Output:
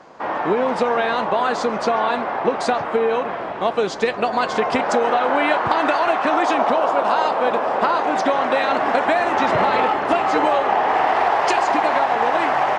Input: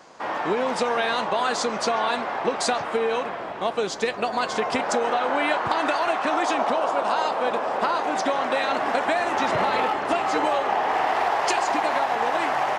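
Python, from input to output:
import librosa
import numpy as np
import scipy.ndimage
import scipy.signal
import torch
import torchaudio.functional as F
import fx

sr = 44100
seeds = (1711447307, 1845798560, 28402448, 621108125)

y = fx.lowpass(x, sr, hz=fx.steps((0.0, 1600.0), (3.29, 2900.0)), slope=6)
y = y * 10.0 ** (5.5 / 20.0)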